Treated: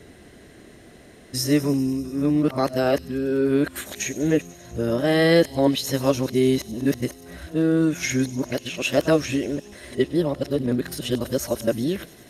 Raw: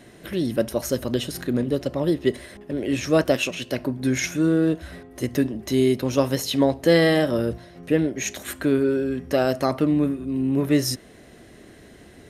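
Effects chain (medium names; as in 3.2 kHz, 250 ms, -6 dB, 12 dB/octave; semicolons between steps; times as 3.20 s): reverse the whole clip; feedback echo behind a high-pass 98 ms, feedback 79%, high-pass 5 kHz, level -12 dB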